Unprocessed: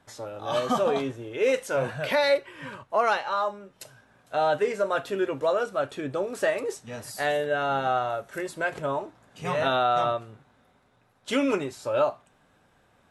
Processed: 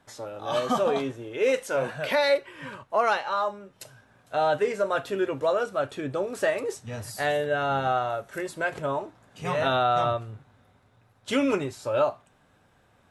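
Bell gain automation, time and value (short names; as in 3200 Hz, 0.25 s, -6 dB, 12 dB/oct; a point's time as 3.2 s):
bell 95 Hz 0.79 oct
-2.5 dB
from 1.63 s -11 dB
from 2.4 s -1 dB
from 3.29 s +5.5 dB
from 6.74 s +12 dB
from 7.92 s +3.5 dB
from 9.69 s +12 dB
from 11.71 s +5 dB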